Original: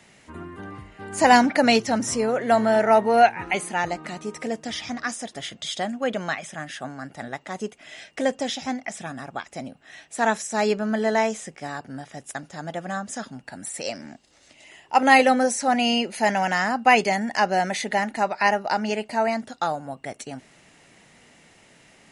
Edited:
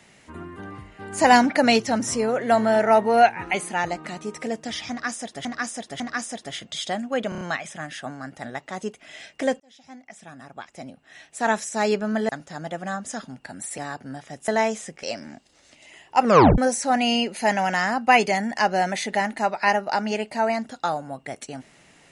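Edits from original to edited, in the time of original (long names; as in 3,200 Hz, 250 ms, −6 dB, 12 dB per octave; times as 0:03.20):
0:04.90–0:05.45: repeat, 3 plays
0:06.19: stutter 0.03 s, 5 plays
0:08.38–0:10.37: fade in
0:11.07–0:11.62: swap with 0:12.32–0:13.81
0:15.01: tape stop 0.35 s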